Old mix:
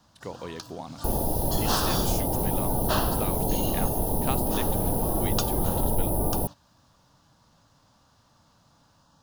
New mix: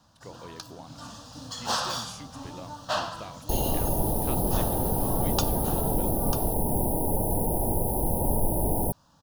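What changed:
speech −7.5 dB
second sound: entry +2.45 s

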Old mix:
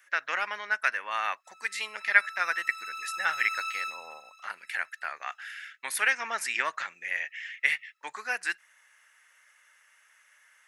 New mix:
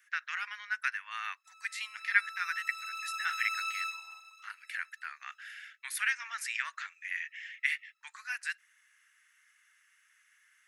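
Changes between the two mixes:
speech −5.0 dB
master: add high-pass filter 1,300 Hz 24 dB per octave

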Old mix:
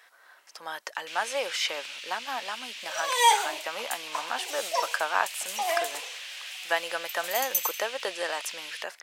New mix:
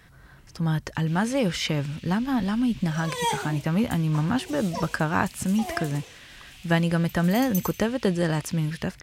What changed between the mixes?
first sound −10.0 dB
second sound −7.0 dB
master: remove high-pass filter 570 Hz 24 dB per octave

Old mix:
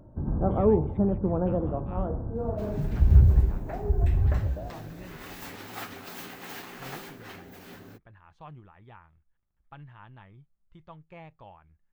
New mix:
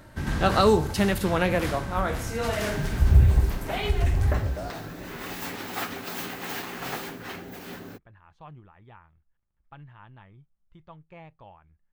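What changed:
first sound: remove Gaussian smoothing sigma 11 samples
second sound +7.0 dB

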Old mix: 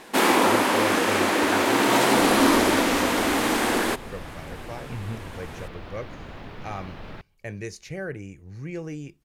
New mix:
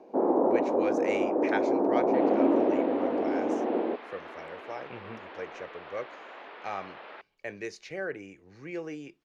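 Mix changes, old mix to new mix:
first sound: add inverse Chebyshev low-pass filter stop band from 4,000 Hz, stop band 80 dB
second sound: add band-pass filter 480–3,200 Hz
master: add three-way crossover with the lows and the highs turned down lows −20 dB, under 260 Hz, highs −18 dB, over 5,500 Hz

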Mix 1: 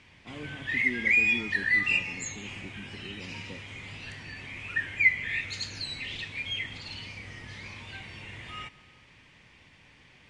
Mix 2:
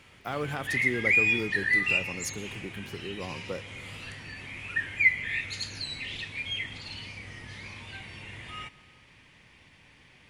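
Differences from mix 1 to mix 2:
speech: remove resonant band-pass 240 Hz, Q 2.7
master: remove low-pass filter 8,700 Hz 24 dB per octave

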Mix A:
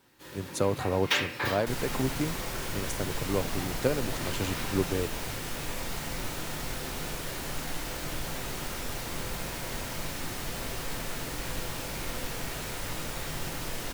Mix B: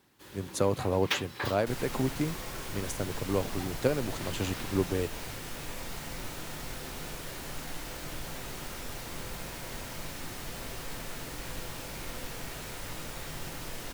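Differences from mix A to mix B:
first sound: send off
second sound −4.5 dB

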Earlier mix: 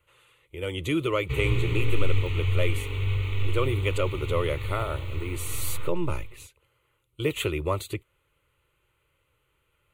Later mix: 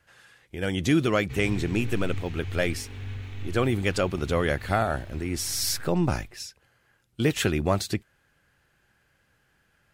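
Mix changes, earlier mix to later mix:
background −11.5 dB
master: remove phaser with its sweep stopped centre 1,100 Hz, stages 8

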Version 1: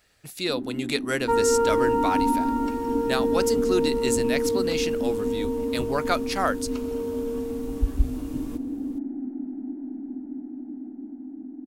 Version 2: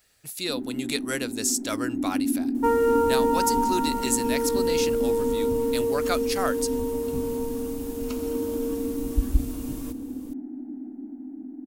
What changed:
speech −4.0 dB
second sound: entry +1.35 s
master: add high-shelf EQ 5,900 Hz +12 dB

